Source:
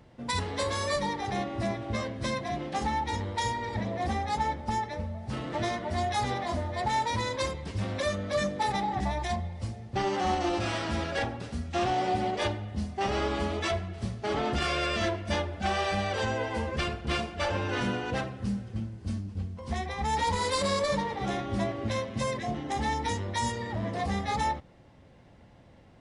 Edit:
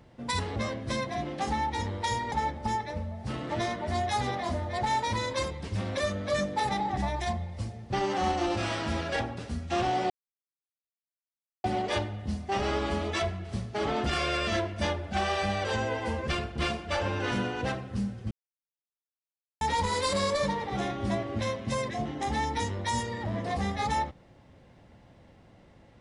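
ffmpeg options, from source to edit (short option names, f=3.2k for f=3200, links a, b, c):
-filter_complex "[0:a]asplit=6[a][b][c][d][e][f];[a]atrim=end=0.562[g];[b]atrim=start=1.898:end=3.662[h];[c]atrim=start=4.348:end=12.13,asetpts=PTS-STARTPTS,afade=t=out:st=7.778:d=0.004:c=hsin,apad=pad_dur=1.54[i];[d]atrim=start=12.13:end=18.8,asetpts=PTS-STARTPTS,afade=t=in:d=0.004:c=hsin,afade=t=out:st=6.666:d=0.004:c=hsin[j];[e]atrim=start=18.8:end=20.1,asetpts=PTS-STARTPTS,volume=0[k];[f]atrim=start=20.1,asetpts=PTS-STARTPTS,afade=t=in:d=0.004:c=hsin[l];[g][h]acrossfade=d=0.004:c1=hsin:c2=hsin[m];[i][j][k][l]concat=n=4:v=0:a=1[n];[m][n]acrossfade=d=0.004:c1=hsin:c2=hsin"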